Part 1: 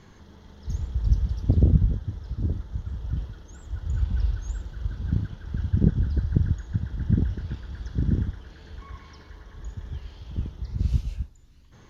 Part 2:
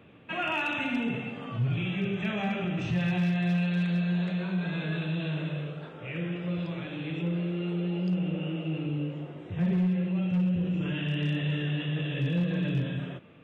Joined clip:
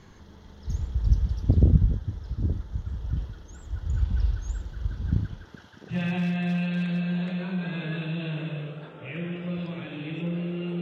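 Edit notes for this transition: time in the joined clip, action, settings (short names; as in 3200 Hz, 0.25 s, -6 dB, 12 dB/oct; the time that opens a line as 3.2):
part 1
5.43–5.96 HPF 230 Hz -> 1500 Hz
5.92 switch to part 2 from 2.92 s, crossfade 0.08 s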